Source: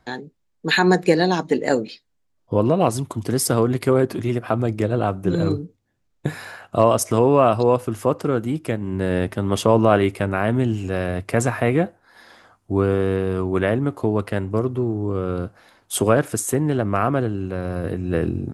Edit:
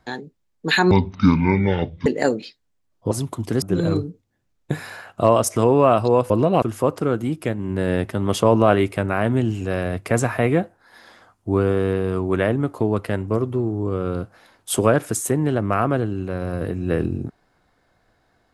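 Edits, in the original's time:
0.91–1.52 s: speed 53%
2.57–2.89 s: move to 7.85 s
3.40–5.17 s: delete

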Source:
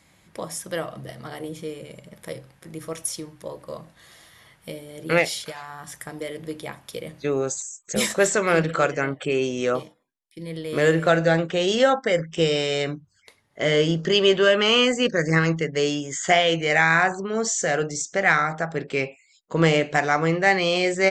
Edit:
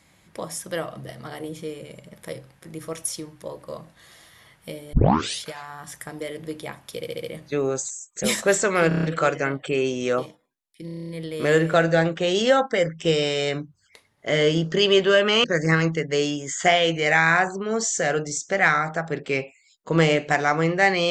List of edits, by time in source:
4.93 s: tape start 0.47 s
6.96 s: stutter 0.07 s, 5 plays
8.60 s: stutter 0.03 s, 6 plays
10.42 s: stutter 0.03 s, 9 plays
14.77–15.08 s: delete

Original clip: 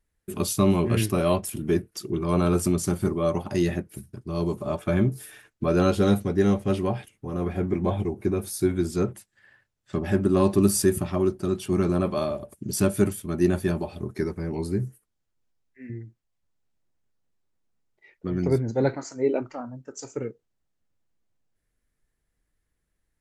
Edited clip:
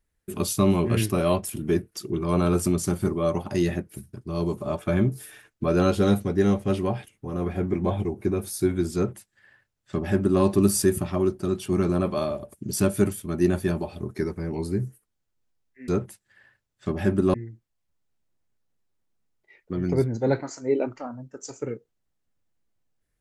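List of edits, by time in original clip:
8.95–10.41 s: copy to 15.88 s

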